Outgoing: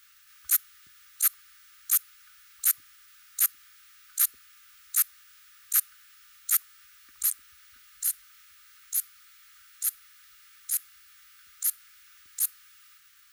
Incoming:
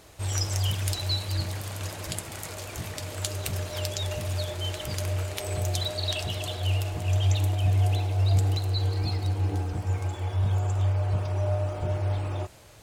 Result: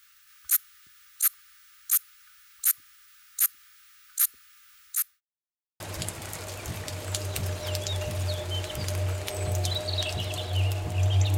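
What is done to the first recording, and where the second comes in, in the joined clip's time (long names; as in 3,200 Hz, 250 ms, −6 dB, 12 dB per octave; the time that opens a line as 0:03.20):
outgoing
0:04.73–0:05.21: fade out equal-power
0:05.21–0:05.80: silence
0:05.80: continue with incoming from 0:01.90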